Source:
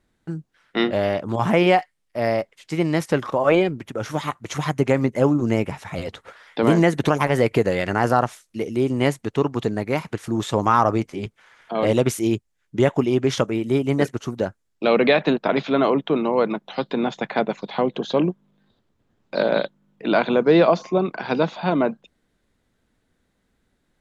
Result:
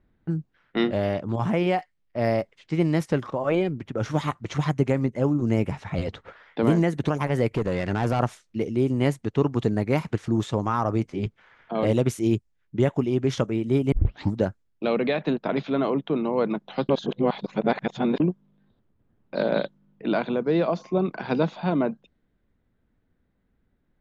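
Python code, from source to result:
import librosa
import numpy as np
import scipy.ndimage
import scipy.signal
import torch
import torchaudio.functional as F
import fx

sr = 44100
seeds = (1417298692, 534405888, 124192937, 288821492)

y = fx.tube_stage(x, sr, drive_db=17.0, bias=0.4, at=(7.48, 8.2))
y = fx.edit(y, sr, fx.tape_start(start_s=13.92, length_s=0.45),
    fx.reverse_span(start_s=16.89, length_s=1.31), tone=tone)
y = fx.rider(y, sr, range_db=4, speed_s=0.5)
y = fx.env_lowpass(y, sr, base_hz=2600.0, full_db=-15.0)
y = fx.low_shelf(y, sr, hz=300.0, db=8.5)
y = y * librosa.db_to_amplitude(-7.0)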